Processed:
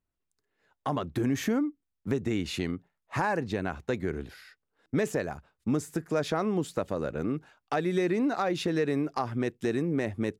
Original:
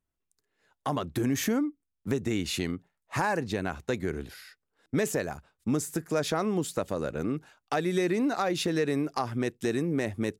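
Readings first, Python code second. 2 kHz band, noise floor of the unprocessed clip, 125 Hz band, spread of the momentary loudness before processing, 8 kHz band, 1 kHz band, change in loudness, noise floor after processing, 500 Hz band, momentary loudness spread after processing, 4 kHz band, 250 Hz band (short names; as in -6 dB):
-1.0 dB, -83 dBFS, 0.0 dB, 9 LU, -7.0 dB, -0.5 dB, -0.5 dB, -83 dBFS, 0.0 dB, 8 LU, -3.5 dB, 0.0 dB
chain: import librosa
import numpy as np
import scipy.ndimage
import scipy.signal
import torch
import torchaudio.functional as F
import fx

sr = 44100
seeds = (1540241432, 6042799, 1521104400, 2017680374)

y = fx.high_shelf(x, sr, hz=5200.0, db=-10.5)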